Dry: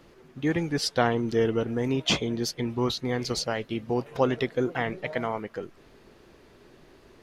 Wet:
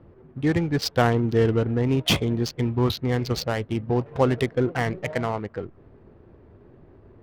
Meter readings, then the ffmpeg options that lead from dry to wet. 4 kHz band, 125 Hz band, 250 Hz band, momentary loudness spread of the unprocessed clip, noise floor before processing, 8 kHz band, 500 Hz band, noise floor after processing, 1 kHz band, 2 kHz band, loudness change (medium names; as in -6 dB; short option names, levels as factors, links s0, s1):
+1.0 dB, +8.5 dB, +4.0 dB, 7 LU, -55 dBFS, -1.0 dB, +3.0 dB, -53 dBFS, +2.5 dB, +2.0 dB, +3.5 dB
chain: -af "equalizer=f=91:t=o:w=1.1:g=11,adynamicsmooth=sensitivity=5.5:basefreq=1000,volume=1.33"